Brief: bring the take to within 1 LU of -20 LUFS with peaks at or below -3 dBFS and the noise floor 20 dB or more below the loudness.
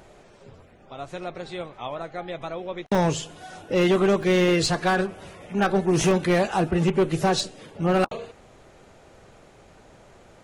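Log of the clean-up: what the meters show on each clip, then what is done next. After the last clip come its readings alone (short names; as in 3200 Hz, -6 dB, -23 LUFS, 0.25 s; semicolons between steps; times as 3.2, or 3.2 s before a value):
clipped 1.8%; flat tops at -15.0 dBFS; dropouts 3; longest dropout 1.8 ms; loudness -24.0 LUFS; peak -15.0 dBFS; loudness target -20.0 LUFS
-> clip repair -15 dBFS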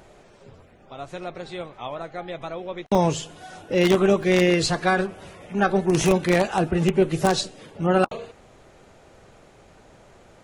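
clipped 0.0%; dropouts 3; longest dropout 1.8 ms
-> interpolate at 2.95/4.23/6.11, 1.8 ms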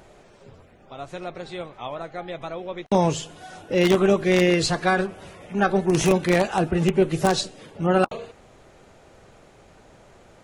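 dropouts 0; loudness -22.5 LUFS; peak -6.0 dBFS; loudness target -20.0 LUFS
-> gain +2.5 dB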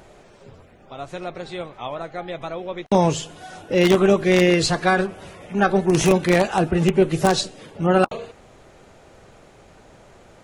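loudness -20.0 LUFS; peak -3.5 dBFS; noise floor -50 dBFS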